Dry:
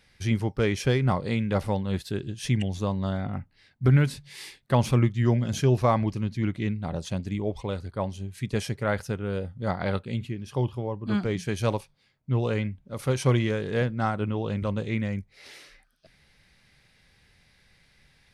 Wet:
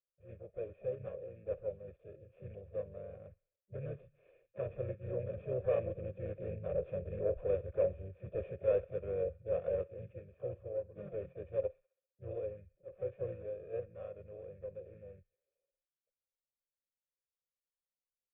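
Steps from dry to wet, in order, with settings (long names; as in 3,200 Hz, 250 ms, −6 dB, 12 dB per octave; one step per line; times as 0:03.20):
running median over 25 samples
source passing by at 0:07.39, 10 m/s, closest 10 metres
noise gate with hold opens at −60 dBFS
in parallel at +0.5 dB: output level in coarse steps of 20 dB
on the sum: transient designer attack −3 dB, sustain +2 dB
pitch-shifted copies added −5 semitones −7 dB, −4 semitones −6 dB, +7 semitones −11 dB
soft clipping −22 dBFS, distortion −15 dB
formant resonators in series e
phaser with its sweep stopped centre 1,300 Hz, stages 8
on a send: delay with a high-pass on its return 65 ms, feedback 57%, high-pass 1,600 Hz, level −20.5 dB
on the sum: level +8.5 dB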